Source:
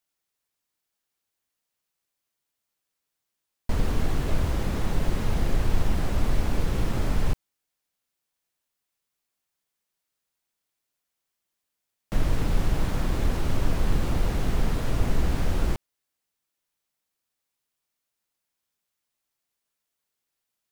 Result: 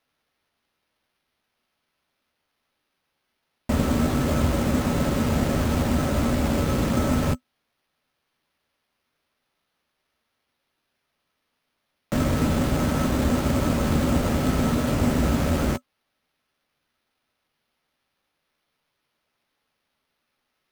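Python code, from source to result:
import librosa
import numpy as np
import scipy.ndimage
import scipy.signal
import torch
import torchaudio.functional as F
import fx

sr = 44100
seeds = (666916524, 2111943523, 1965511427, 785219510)

y = scipy.signal.sosfilt(scipy.signal.butter(2, 72.0, 'highpass', fs=sr, output='sos'), x)
y = fx.small_body(y, sr, hz=(250.0, 570.0, 1300.0), ring_ms=85, db=11)
y = fx.sample_hold(y, sr, seeds[0], rate_hz=7600.0, jitter_pct=0)
y = fx.doubler(y, sr, ms=13.0, db=-10.5)
y = F.gain(torch.from_numpy(y), 5.0).numpy()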